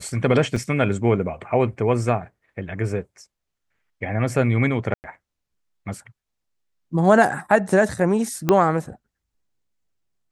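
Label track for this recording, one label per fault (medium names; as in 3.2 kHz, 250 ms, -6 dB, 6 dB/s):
0.560000	0.560000	dropout 4.8 ms
4.940000	5.040000	dropout 99 ms
8.490000	8.490000	pop -5 dBFS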